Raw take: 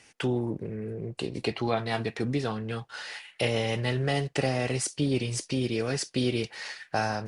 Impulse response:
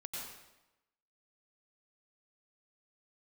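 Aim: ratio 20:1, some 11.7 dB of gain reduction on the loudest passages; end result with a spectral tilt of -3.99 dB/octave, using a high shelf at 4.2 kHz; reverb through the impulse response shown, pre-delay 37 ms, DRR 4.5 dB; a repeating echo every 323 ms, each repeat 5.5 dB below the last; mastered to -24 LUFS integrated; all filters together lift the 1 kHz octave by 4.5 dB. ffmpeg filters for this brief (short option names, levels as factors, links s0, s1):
-filter_complex "[0:a]equalizer=f=1000:t=o:g=6,highshelf=f=4200:g=8.5,acompressor=threshold=0.0282:ratio=20,aecho=1:1:323|646|969|1292|1615|1938|2261:0.531|0.281|0.149|0.079|0.0419|0.0222|0.0118,asplit=2[s0][s1];[1:a]atrim=start_sample=2205,adelay=37[s2];[s1][s2]afir=irnorm=-1:irlink=0,volume=0.631[s3];[s0][s3]amix=inputs=2:normalize=0,volume=2.99"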